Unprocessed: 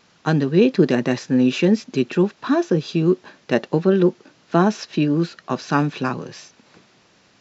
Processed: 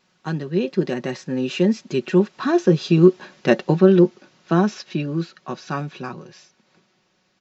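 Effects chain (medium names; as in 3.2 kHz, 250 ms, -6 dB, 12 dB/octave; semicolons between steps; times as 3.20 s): Doppler pass-by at 3.21 s, 6 m/s, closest 5.4 m; comb 5.4 ms, depth 50%; trim +2 dB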